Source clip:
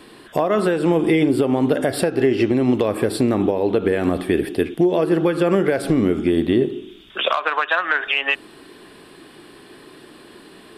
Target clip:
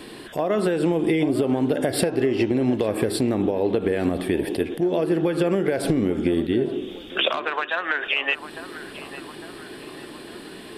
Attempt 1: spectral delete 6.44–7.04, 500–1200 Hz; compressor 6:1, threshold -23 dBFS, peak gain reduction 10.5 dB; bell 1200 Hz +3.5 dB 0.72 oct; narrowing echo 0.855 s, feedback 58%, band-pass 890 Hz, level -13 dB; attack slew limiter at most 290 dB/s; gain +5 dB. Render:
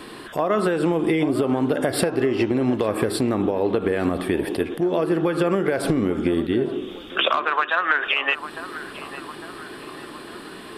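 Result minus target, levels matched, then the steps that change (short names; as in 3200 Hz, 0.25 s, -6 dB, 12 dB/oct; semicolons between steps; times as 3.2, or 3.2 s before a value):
1000 Hz band +4.5 dB
change: bell 1200 Hz -5 dB 0.72 oct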